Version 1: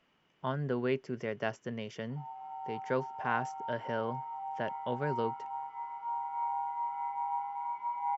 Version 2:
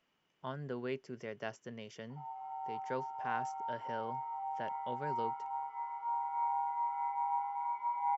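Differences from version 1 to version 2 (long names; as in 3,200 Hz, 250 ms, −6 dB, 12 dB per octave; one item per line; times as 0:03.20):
speech −7.0 dB
master: add bass and treble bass −2 dB, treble +6 dB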